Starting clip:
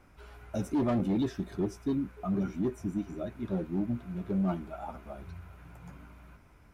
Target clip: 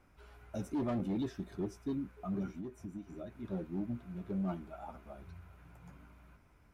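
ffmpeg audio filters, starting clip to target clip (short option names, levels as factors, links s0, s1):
-filter_complex "[0:a]asplit=3[s0][s1][s2];[s0]afade=t=out:st=2.51:d=0.02[s3];[s1]acompressor=threshold=0.02:ratio=6,afade=t=in:st=2.51:d=0.02,afade=t=out:st=3.43:d=0.02[s4];[s2]afade=t=in:st=3.43:d=0.02[s5];[s3][s4][s5]amix=inputs=3:normalize=0,volume=0.473"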